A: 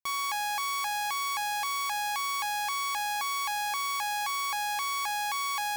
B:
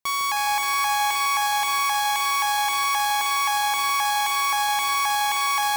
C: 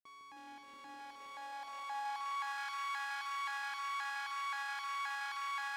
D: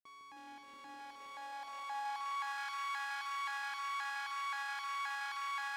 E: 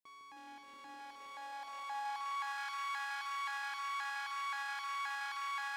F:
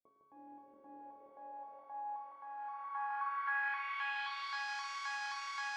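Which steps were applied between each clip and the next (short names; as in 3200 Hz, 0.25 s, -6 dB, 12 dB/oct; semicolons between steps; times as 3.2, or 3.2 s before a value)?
echo with dull and thin repeats by turns 0.156 s, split 1100 Hz, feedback 83%, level -4 dB; gain +6.5 dB
self-modulated delay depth 0.19 ms; passive tone stack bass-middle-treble 5-5-5; band-pass sweep 330 Hz -> 1300 Hz, 0.81–2.66; gain +3.5 dB
nothing audible
low shelf 150 Hz -4.5 dB
resonator bank D2 major, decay 0.3 s; de-hum 280.6 Hz, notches 11; low-pass sweep 550 Hz -> 5900 Hz, 2.48–4.77; gain +10 dB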